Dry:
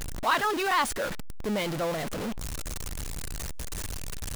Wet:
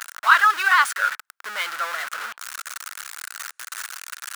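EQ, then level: resonant high-pass 1400 Hz, resonance Q 4.5; +3.5 dB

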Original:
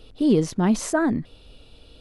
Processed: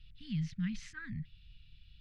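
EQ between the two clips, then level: elliptic band-stop 160–1900 Hz, stop band 60 dB; air absorption 220 m; -6.5 dB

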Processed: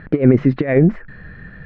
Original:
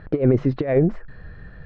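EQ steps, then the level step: bell 210 Hz +10 dB 1.6 oct; bell 2000 Hz +11.5 dB 1.4 oct; -1.5 dB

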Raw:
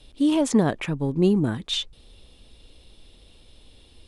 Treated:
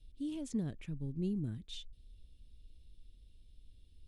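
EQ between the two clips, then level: passive tone stack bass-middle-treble 10-0-1; +1.0 dB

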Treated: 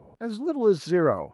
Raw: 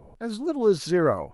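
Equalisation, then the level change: HPF 94 Hz 12 dB/oct; high shelf 4400 Hz -9 dB; 0.0 dB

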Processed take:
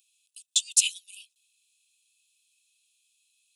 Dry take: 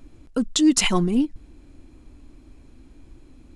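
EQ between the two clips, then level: rippled Chebyshev high-pass 2500 Hz, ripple 6 dB; high shelf 9800 Hz +11.5 dB; 0.0 dB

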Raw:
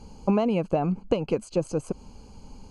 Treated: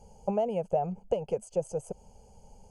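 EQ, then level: low shelf 190 Hz -9 dB; band shelf 1900 Hz -13 dB 1.2 oct; fixed phaser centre 1100 Hz, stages 6; 0.0 dB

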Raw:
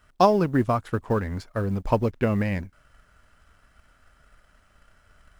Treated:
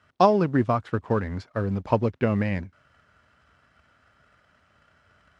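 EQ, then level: HPF 77 Hz 24 dB/oct; LPF 5000 Hz 12 dB/oct; 0.0 dB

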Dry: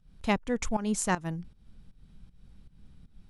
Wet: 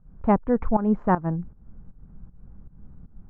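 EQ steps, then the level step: LPF 1300 Hz 24 dB/oct; +8.0 dB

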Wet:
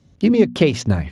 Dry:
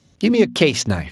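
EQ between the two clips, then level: tilt -2 dB/oct; -2.5 dB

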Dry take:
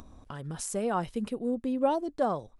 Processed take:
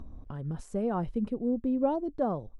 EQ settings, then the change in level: tilt -4.5 dB/oct; low shelf 130 Hz -8.5 dB; -5.0 dB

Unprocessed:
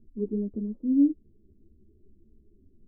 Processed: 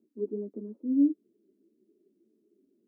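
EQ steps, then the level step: HPF 270 Hz 24 dB/oct; 0.0 dB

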